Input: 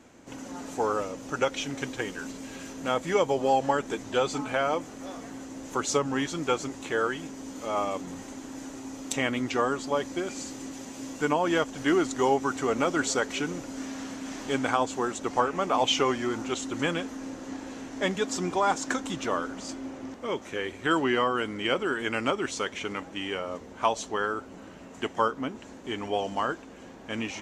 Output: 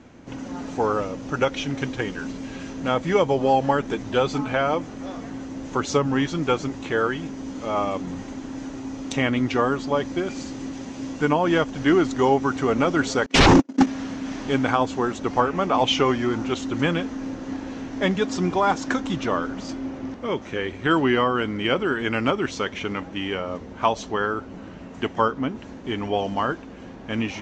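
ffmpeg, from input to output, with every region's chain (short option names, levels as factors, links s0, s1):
-filter_complex "[0:a]asettb=1/sr,asplit=3[s0][s1][s2];[s0]atrim=end=13.264[s3];[s1]atrim=start=13.26:end=13.87,asetpts=PTS-STARTPTS,afade=t=in:d=0.004:c=qsin,afade=t=out:st=0.606:d=0.004:c=qsin,agate=range=0.00178:threshold=0.02:ratio=16:release=100:detection=peak,highpass=f=260:t=q:w=2,aeval=exprs='0.178*sin(PI/2*7.94*val(0)/0.178)':c=same[s4];[s2]atrim=start=13.866[s5];[s3][s4]acrossfade=d=0.004:c1=hsin:c2=qsin[s6];[s6][s5]acrossfade=d=0.004:c1=qsin:c2=hsin,lowpass=f=6200:w=0.5412,lowpass=f=6200:w=1.3066,bass=f=250:g=7,treble=f=4000:g=-3,volume=1.58"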